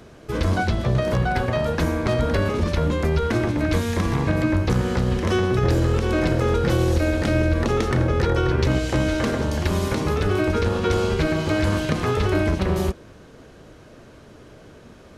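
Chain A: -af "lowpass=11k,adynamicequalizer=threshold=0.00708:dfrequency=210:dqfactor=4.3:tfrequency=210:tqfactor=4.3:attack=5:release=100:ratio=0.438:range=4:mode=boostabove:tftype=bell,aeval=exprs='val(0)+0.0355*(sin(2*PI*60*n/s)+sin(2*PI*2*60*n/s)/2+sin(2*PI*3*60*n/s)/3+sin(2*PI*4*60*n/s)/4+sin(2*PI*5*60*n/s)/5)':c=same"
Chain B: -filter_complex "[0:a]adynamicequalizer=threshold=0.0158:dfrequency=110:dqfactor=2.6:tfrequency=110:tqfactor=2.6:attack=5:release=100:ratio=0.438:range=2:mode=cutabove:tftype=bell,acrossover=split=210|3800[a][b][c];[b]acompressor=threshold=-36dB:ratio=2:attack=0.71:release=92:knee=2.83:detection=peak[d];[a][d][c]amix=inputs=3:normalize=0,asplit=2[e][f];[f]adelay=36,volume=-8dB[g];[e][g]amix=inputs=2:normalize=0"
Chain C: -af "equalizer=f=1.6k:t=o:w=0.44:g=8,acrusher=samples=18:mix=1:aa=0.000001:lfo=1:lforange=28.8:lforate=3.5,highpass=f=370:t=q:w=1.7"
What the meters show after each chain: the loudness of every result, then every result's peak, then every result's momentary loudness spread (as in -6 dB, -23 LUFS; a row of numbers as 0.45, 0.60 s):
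-20.5, -25.5, -21.0 LUFS; -7.0, -10.0, -5.0 dBFS; 13, 4, 4 LU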